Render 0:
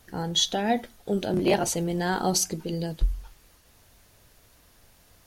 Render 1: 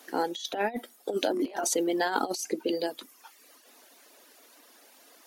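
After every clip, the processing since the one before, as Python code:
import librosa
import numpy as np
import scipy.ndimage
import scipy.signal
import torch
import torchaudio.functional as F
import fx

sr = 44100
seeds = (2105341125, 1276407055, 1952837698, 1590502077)

y = scipy.signal.sosfilt(scipy.signal.ellip(4, 1.0, 60, 260.0, 'highpass', fs=sr, output='sos'), x)
y = fx.dereverb_blind(y, sr, rt60_s=0.85)
y = fx.over_compress(y, sr, threshold_db=-31.0, ratio=-0.5)
y = y * librosa.db_to_amplitude(3.0)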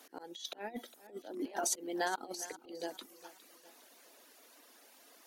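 y = fx.auto_swell(x, sr, attack_ms=349.0)
y = fx.echo_feedback(y, sr, ms=409, feedback_pct=43, wet_db=-16.5)
y = y * librosa.db_to_amplitude(-4.5)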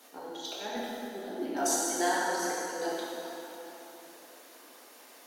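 y = fx.rev_plate(x, sr, seeds[0], rt60_s=3.5, hf_ratio=0.6, predelay_ms=0, drr_db=-7.5)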